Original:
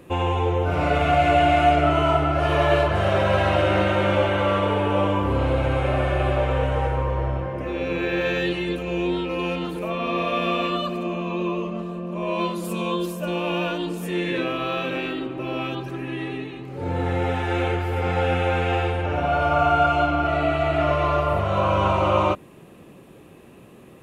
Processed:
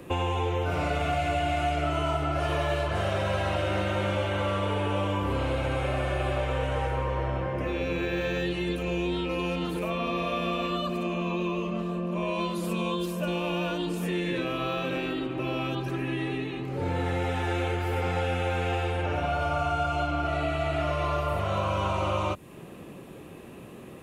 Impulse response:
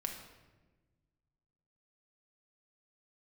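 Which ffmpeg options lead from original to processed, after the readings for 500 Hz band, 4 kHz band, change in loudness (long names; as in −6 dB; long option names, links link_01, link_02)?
−7.0 dB, −4.0 dB, −6.0 dB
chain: -filter_complex "[0:a]acrossover=split=140|1500|4500[link_01][link_02][link_03][link_04];[link_01]acompressor=threshold=-35dB:ratio=4[link_05];[link_02]acompressor=threshold=-32dB:ratio=4[link_06];[link_03]acompressor=threshold=-42dB:ratio=4[link_07];[link_04]acompressor=threshold=-49dB:ratio=4[link_08];[link_05][link_06][link_07][link_08]amix=inputs=4:normalize=0,volume=2.5dB"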